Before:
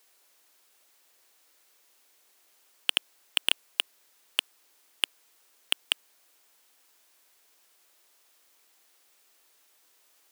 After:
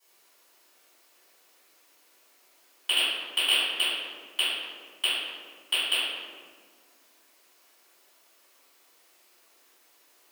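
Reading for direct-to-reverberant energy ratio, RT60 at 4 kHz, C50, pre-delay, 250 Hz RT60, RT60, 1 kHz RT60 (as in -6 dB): -16.0 dB, 0.95 s, -3.0 dB, 3 ms, 2.5 s, 1.8 s, 1.6 s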